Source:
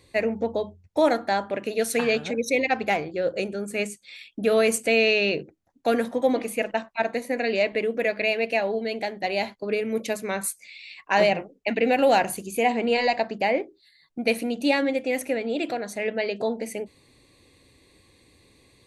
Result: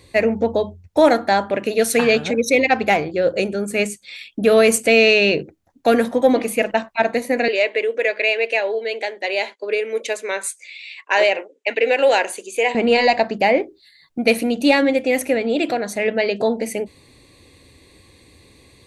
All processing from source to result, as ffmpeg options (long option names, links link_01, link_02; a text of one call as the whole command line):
ffmpeg -i in.wav -filter_complex "[0:a]asettb=1/sr,asplit=3[link_01][link_02][link_03];[link_01]atrim=end=7.484[link_04];[link_02]atrim=start=7.48:end=12.75,asetpts=PTS-STARTPTS,afade=type=in:duration=0.004:curve=qsin,afade=type=out:start_time=5.266:duration=0.004:curve=qsin,highpass=frequency=400:width=0.5412,highpass=frequency=400:width=1.3066,equalizer=frequency=730:width_type=q:width=4:gain=-9,equalizer=frequency=1200:width_type=q:width=4:gain=-6,equalizer=frequency=5200:width_type=q:width=4:gain=-5,lowpass=frequency=8800:width=0.5412,lowpass=frequency=8800:width=1.3066,bandreject=frequency=4300:width=20[link_05];[link_03]atrim=start=12.746[link_06];[link_04][link_05]acrossfade=duration=0.004:curve1=hsin:curve2=qsin[link_07];[link_07][link_06]acrossfade=duration=0.004:curve1=qsin:curve2=hsin,equalizer=frequency=77:width=2.3:gain=4,acontrast=36,volume=2dB" out.wav